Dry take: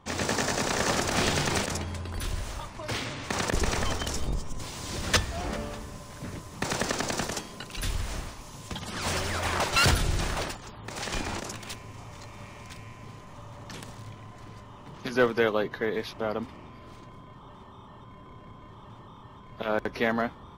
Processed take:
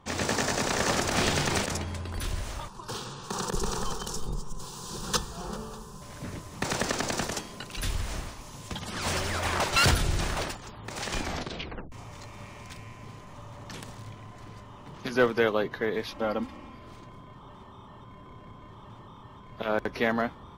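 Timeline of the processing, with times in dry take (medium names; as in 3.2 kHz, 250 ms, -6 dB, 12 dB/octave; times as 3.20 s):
2.68–6.02 s: static phaser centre 420 Hz, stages 8
11.22 s: tape stop 0.70 s
16.08–16.75 s: comb 3.7 ms, depth 62%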